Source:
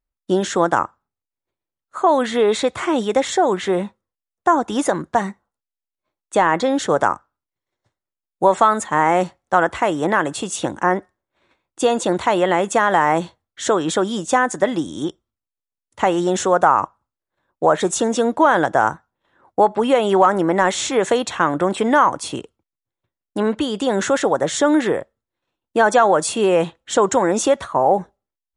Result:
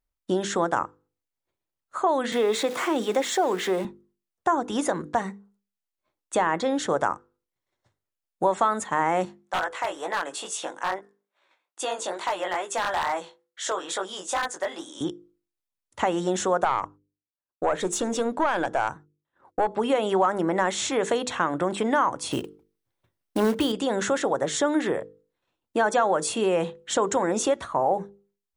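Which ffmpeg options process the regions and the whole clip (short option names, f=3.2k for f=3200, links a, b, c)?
-filter_complex "[0:a]asettb=1/sr,asplit=3[a][b][c];[a]atrim=end=2.324[d];[b]atrim=start=2.32:end=3.85,asetpts=PTS-STARTPTS,afade=t=in:d=0.004:c=qsin,afade=t=out:st=1.526:d=0.004:c=qsin,aeval=exprs='val(0)+0.5*0.0335*sgn(val(0))':c=same,highpass=f=200:w=0.5412,highpass=f=200:w=1.3066[e];[c]atrim=start=3.846[f];[d][e]acrossfade=d=0.004:c1=hsin:c2=qsin[g];[g][f]acrossfade=d=0.004:c1=qsin:c2=hsin,asettb=1/sr,asplit=3[h][i][j];[h]atrim=end=9.254[k];[i]atrim=start=9.25:end=15.01,asetpts=PTS-STARTPTS,afade=t=in:d=0.004:c=qsin,afade=t=out:st=5.756:d=0.004:c=qsin,highpass=600,flanger=delay=15.5:depth=6.8:speed=2.3,aeval=exprs='0.211*(abs(mod(val(0)/0.211+3,4)-2)-1)':c=same[l];[j]atrim=start=15.006[m];[k][l]acrossfade=d=0.004:c1=hsin:c2=qsin[n];[n][m]acrossfade=d=0.004:c1=qsin:c2=hsin,asettb=1/sr,asplit=3[o][p][q];[o]atrim=end=16.644[r];[p]atrim=start=16.64:end=19.68,asetpts=PTS-STARTPTS,afade=t=in:d=0.004:c=qsin,afade=t=out:st=3.036:d=0.004:c=qsin,agate=range=-33dB:threshold=-53dB:ratio=3:release=100:detection=peak,aeval=exprs='(tanh(2*val(0)+0.4)-tanh(0.4))/2':c=same[s];[q]atrim=start=19.676[t];[r][s]acrossfade=d=0.004:c1=hsin:c2=qsin[u];[u][t]acrossfade=d=0.004:c1=qsin:c2=hsin,asettb=1/sr,asplit=3[v][w][x];[v]atrim=end=22.314[y];[w]atrim=start=22.31:end=23.72,asetpts=PTS-STARTPTS,afade=t=in:d=0.004:c=qsin,afade=t=out:st=1.406:d=0.004:c=qsin,bandreject=f=7.1k:w=6.9,acontrast=39,acrusher=bits=5:mode=log:mix=0:aa=0.000001[z];[x]atrim=start=23.716[aa];[y][z]acrossfade=d=0.004:c1=hsin:c2=qsin[ab];[ab][aa]acrossfade=d=0.004:c1=qsin:c2=hsin,bandreject=f=50:t=h:w=6,bandreject=f=100:t=h:w=6,bandreject=f=150:t=h:w=6,bandreject=f=200:t=h:w=6,bandreject=f=250:t=h:w=6,bandreject=f=300:t=h:w=6,bandreject=f=350:t=h:w=6,bandreject=f=400:t=h:w=6,bandreject=f=450:t=h:w=6,bandreject=f=500:t=h:w=6,acompressor=threshold=-32dB:ratio=1.5"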